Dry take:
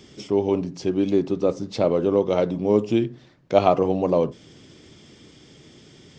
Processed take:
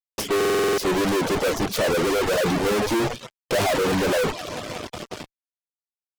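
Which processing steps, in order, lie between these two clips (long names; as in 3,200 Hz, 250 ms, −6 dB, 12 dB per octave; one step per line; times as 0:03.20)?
spectral magnitudes quantised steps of 15 dB
high-shelf EQ 4,400 Hz −3 dB
on a send: delay with a high-pass on its return 180 ms, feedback 85%, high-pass 1,600 Hz, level −13 dB
on the sum: soft clipping −20 dBFS, distortion −8 dB
noise gate with hold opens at −36 dBFS
harmonic generator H 7 −14 dB, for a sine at −20 dBFS
parametric band 470 Hz +2.5 dB 0.74 octaves
fuzz pedal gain 52 dB, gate −55 dBFS
reverb reduction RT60 0.54 s
buffer that repeats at 0:00.36, samples 2,048, times 8
level −6 dB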